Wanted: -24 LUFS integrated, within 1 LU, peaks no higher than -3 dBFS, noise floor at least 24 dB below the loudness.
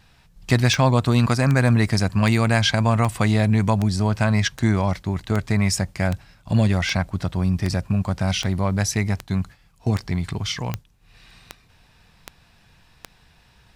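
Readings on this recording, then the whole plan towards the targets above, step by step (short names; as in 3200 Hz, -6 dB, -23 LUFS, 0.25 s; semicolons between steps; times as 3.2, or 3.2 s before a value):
clicks 17; loudness -21.5 LUFS; peak -4.0 dBFS; loudness target -24.0 LUFS
-> de-click; gain -2.5 dB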